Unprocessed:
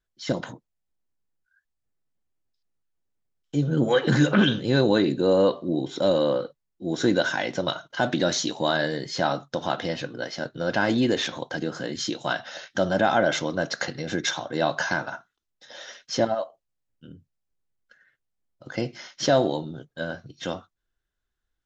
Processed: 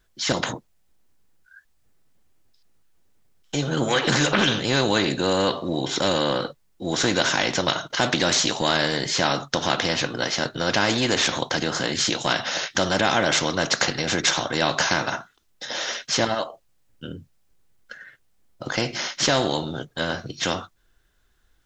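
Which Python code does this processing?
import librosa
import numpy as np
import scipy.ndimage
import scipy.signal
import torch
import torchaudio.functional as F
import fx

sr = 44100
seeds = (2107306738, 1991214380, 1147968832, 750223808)

y = fx.spectral_comp(x, sr, ratio=2.0)
y = F.gain(torch.from_numpy(y), 3.5).numpy()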